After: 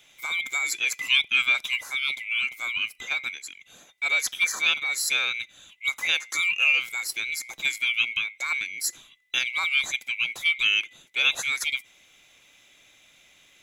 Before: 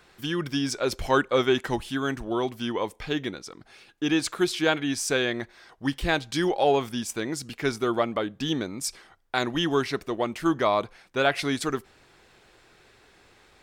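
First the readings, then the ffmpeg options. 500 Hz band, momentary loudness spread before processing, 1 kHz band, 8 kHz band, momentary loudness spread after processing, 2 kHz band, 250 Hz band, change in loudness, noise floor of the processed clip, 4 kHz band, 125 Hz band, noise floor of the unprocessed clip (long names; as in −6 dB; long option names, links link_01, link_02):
−24.0 dB, 8 LU, −10.5 dB, +4.0 dB, 9 LU, +8.5 dB, below −25 dB, +2.5 dB, −58 dBFS, +6.0 dB, below −25 dB, −58 dBFS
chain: -filter_complex "[0:a]afftfilt=real='real(if(lt(b,920),b+92*(1-2*mod(floor(b/92),2)),b),0)':imag='imag(if(lt(b,920),b+92*(1-2*mod(floor(b/92),2)),b),0)':win_size=2048:overlap=0.75,highshelf=frequency=2500:gain=8.5,acrossover=split=520|3000[link_01][link_02][link_03];[link_01]acompressor=threshold=-49dB:ratio=6[link_04];[link_04][link_02][link_03]amix=inputs=3:normalize=0,volume=-4.5dB"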